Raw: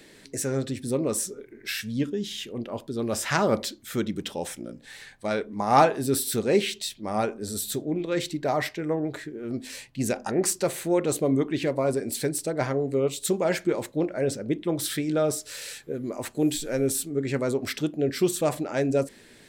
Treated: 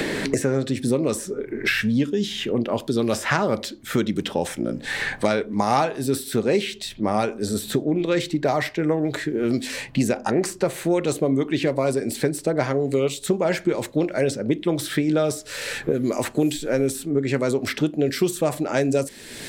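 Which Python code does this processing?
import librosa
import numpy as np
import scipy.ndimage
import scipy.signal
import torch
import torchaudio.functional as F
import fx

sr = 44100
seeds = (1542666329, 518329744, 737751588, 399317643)

y = fx.high_shelf(x, sr, hz=4900.0, db=fx.steps((0.0, -6.0), (18.05, 2.5)))
y = fx.band_squash(y, sr, depth_pct=100)
y = y * librosa.db_to_amplitude(3.5)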